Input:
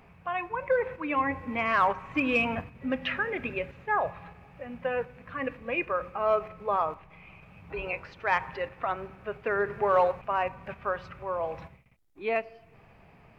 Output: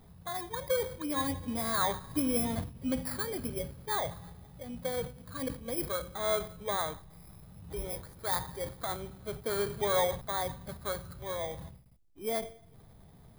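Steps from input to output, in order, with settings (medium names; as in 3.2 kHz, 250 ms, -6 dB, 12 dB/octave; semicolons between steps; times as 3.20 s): bit-reversed sample order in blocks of 16 samples; bass shelf 270 Hz +10.5 dB; decay stretcher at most 140 dB/s; trim -6.5 dB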